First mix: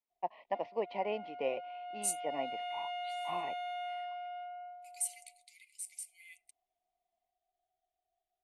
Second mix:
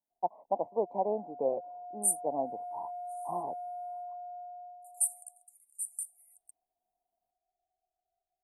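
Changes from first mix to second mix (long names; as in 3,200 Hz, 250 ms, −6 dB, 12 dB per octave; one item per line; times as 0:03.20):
first voice +5.5 dB
second voice: add high-shelf EQ 4,100 Hz +9.5 dB
master: add elliptic band-stop filter 880–9,000 Hz, stop band 40 dB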